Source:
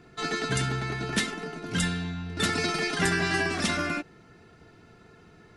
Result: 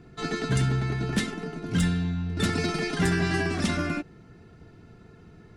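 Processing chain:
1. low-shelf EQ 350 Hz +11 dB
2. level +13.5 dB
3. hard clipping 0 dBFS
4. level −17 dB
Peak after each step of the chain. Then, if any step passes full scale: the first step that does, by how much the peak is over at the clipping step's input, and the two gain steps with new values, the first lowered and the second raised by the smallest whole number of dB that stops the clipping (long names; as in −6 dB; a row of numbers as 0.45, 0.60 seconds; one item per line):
−7.5, +6.0, 0.0, −17.0 dBFS
step 2, 6.0 dB
step 2 +7.5 dB, step 4 −11 dB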